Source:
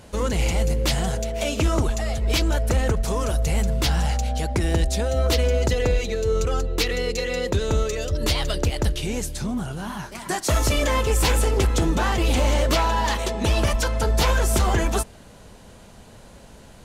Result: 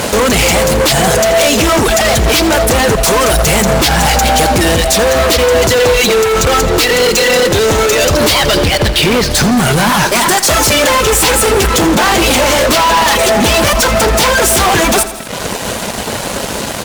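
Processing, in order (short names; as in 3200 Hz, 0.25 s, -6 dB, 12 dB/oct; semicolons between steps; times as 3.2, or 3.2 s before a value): HPF 290 Hz 6 dB/oct; reverb removal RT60 0.67 s; 8.38–9.31 Chebyshev low-pass 4700 Hz, order 4; compressor 4:1, threshold -34 dBFS, peak gain reduction 12.5 dB; fuzz box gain 47 dB, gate -54 dBFS; feedback echo 83 ms, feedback 57%, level -14 dB; on a send at -19 dB: reverb RT60 0.20 s, pre-delay 0.189 s; on the sum: gain +4.5 dB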